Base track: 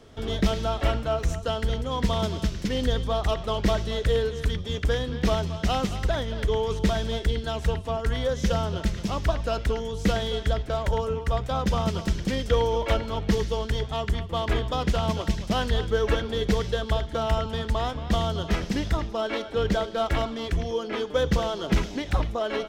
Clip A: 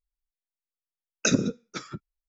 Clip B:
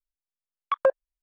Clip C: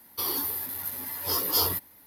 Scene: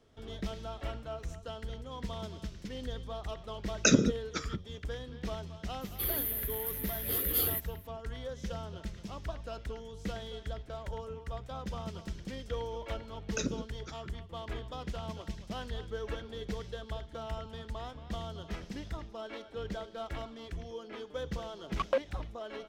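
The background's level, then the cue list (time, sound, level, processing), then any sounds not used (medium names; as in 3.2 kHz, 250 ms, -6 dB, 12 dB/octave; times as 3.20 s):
base track -14.5 dB
2.60 s: add A -0.5 dB
5.81 s: add C -2.5 dB + static phaser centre 2.3 kHz, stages 4
12.12 s: add A -12 dB
21.08 s: add B -8 dB + delay time shaken by noise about 1.6 kHz, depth 0.038 ms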